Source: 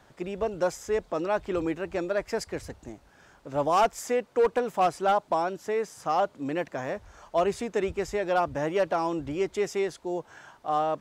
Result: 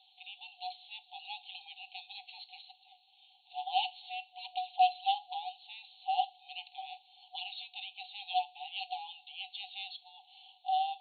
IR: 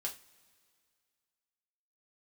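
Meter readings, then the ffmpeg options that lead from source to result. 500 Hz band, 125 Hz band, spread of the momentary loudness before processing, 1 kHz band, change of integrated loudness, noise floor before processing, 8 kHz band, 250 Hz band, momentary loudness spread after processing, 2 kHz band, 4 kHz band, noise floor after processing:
below −20 dB, below −40 dB, 10 LU, −5.5 dB, −9.0 dB, −59 dBFS, below −35 dB, below −40 dB, 16 LU, −10.0 dB, +4.5 dB, −66 dBFS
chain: -filter_complex "[0:a]asplit=2[link_01][link_02];[1:a]atrim=start_sample=2205[link_03];[link_02][link_03]afir=irnorm=-1:irlink=0,volume=-7dB[link_04];[link_01][link_04]amix=inputs=2:normalize=0,afftfilt=real='re*between(b*sr/4096,730,4400)':imag='im*between(b*sr/4096,730,4400)':win_size=4096:overlap=0.75,asuperstop=centerf=1400:order=12:qfactor=0.65,volume=5dB"

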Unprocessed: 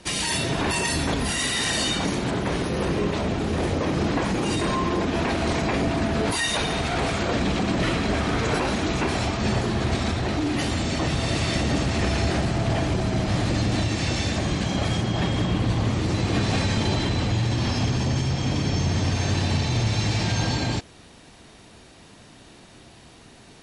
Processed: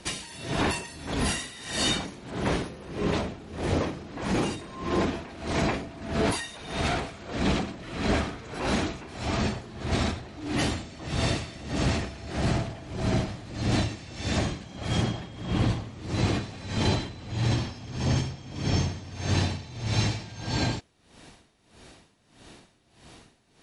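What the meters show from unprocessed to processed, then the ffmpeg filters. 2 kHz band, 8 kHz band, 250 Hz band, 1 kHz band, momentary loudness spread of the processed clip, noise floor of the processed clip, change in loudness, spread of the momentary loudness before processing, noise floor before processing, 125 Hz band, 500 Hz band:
−6.0 dB, −6.0 dB, −5.5 dB, −5.5 dB, 8 LU, −62 dBFS, −5.5 dB, 2 LU, −49 dBFS, −5.5 dB, −5.5 dB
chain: -af "aeval=exprs='val(0)*pow(10,-19*(0.5-0.5*cos(2*PI*1.6*n/s))/20)':channel_layout=same"

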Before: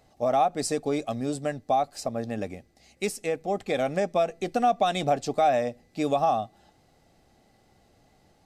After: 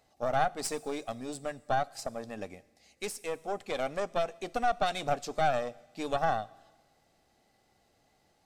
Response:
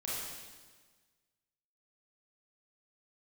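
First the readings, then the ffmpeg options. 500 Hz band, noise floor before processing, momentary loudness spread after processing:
−7.0 dB, −63 dBFS, 11 LU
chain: -filter_complex "[0:a]lowshelf=frequency=400:gain=-8,aeval=exprs='0.266*(cos(1*acos(clip(val(0)/0.266,-1,1)))-cos(1*PI/2))+0.0531*(cos(4*acos(clip(val(0)/0.266,-1,1)))-cos(4*PI/2))':channel_layout=same,asplit=2[link_01][link_02];[1:a]atrim=start_sample=2205,highshelf=frequency=5600:gain=11.5[link_03];[link_02][link_03]afir=irnorm=-1:irlink=0,volume=-25.5dB[link_04];[link_01][link_04]amix=inputs=2:normalize=0,volume=-4.5dB"

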